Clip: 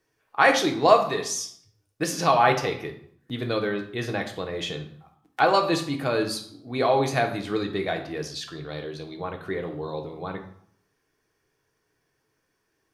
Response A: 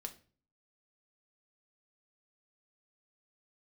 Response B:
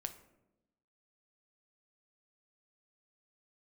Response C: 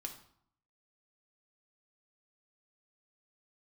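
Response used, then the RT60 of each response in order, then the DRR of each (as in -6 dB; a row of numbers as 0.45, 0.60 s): C; 0.40, 0.95, 0.65 s; 4.5, 7.5, 2.5 dB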